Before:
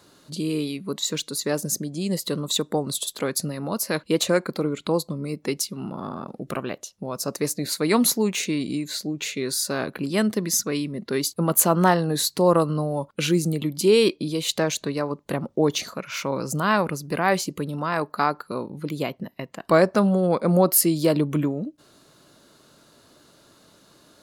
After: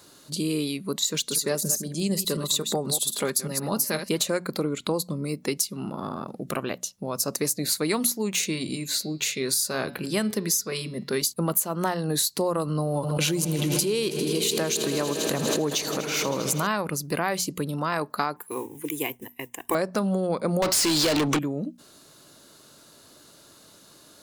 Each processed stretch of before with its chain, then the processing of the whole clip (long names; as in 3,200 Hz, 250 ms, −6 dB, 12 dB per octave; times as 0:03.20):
0:01.14–0:04.25: delay that plays each chunk backwards 123 ms, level −9.5 dB + comb filter 5 ms, depth 32%
0:08.48–0:11.22: notch filter 290 Hz, Q 8.3 + hum removal 141.7 Hz, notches 38
0:12.63–0:16.67: echo that builds up and dies away 80 ms, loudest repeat 5, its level −18 dB + background raised ahead of every attack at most 39 dB per second
0:18.36–0:19.75: high-shelf EQ 4,600 Hz +10 dB + noise that follows the level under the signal 25 dB + phaser with its sweep stopped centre 900 Hz, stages 8
0:20.62–0:21.39: low-pass filter 7,600 Hz 24 dB per octave + high-shelf EQ 2,200 Hz +9 dB + mid-hump overdrive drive 32 dB, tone 4,100 Hz, clips at −6.5 dBFS
whole clip: high-shelf EQ 4,900 Hz +9 dB; mains-hum notches 60/120/180/240 Hz; downward compressor 12 to 1, threshold −21 dBFS